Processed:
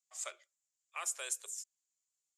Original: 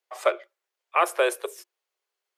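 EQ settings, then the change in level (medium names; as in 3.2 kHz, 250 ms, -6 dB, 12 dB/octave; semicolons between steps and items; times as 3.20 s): band-pass filter 7.2 kHz, Q 6.5; +10.5 dB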